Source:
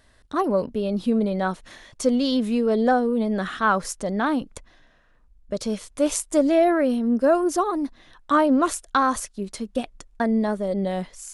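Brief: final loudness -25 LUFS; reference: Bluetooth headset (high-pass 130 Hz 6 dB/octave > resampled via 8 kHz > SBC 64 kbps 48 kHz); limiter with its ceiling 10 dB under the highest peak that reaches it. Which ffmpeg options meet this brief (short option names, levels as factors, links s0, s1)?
-af "alimiter=limit=0.126:level=0:latency=1,highpass=f=130:p=1,aresample=8000,aresample=44100,volume=1.41" -ar 48000 -c:a sbc -b:a 64k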